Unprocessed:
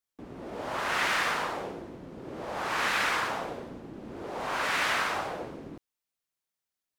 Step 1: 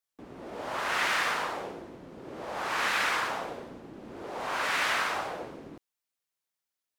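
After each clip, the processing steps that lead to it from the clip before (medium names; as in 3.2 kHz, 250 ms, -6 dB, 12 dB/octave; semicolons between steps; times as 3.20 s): bass shelf 280 Hz -5.5 dB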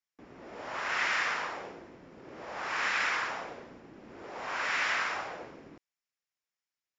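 rippled Chebyshev low-pass 7.3 kHz, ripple 6 dB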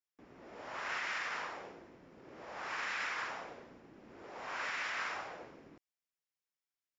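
peak limiter -23 dBFS, peak gain reduction 4.5 dB; trim -6 dB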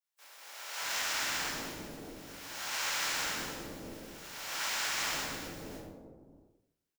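spectral contrast reduction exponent 0.23; bands offset in time highs, lows 620 ms, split 560 Hz; reverberation RT60 0.80 s, pre-delay 3 ms, DRR -8.5 dB; trim -3.5 dB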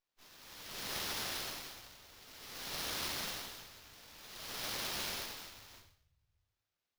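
inverse Chebyshev band-stop 200–1800 Hz, stop band 40 dB; tilt EQ +2 dB/octave; sliding maximum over 5 samples; trim -4 dB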